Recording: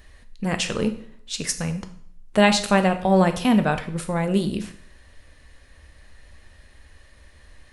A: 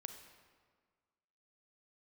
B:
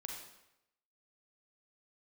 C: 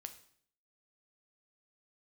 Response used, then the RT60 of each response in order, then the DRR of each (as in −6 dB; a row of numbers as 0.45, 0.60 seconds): C; 1.7, 0.85, 0.60 seconds; 6.5, 0.0, 7.5 decibels